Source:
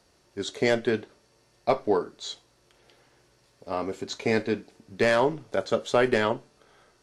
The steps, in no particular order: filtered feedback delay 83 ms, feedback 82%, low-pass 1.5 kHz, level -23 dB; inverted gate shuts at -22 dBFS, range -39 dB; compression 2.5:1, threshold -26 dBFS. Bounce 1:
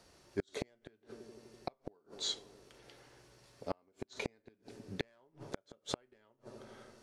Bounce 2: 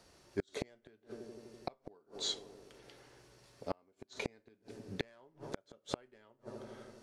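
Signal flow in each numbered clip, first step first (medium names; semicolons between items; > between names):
compression > filtered feedback delay > inverted gate; filtered feedback delay > inverted gate > compression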